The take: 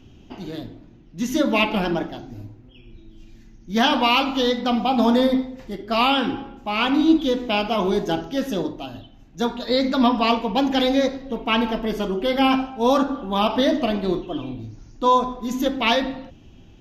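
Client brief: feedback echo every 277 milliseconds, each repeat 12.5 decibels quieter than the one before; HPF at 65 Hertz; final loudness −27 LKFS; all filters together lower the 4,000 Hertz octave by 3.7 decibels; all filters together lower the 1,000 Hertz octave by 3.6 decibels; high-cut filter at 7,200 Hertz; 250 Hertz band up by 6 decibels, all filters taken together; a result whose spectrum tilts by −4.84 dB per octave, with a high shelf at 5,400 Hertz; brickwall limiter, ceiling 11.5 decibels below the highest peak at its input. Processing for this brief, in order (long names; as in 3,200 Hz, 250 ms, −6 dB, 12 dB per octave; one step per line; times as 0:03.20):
high-pass filter 65 Hz
low-pass filter 7,200 Hz
parametric band 250 Hz +7 dB
parametric band 1,000 Hz −5 dB
parametric band 4,000 Hz −7.5 dB
high-shelf EQ 5,400 Hz +7.5 dB
brickwall limiter −14 dBFS
repeating echo 277 ms, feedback 24%, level −12.5 dB
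level −4.5 dB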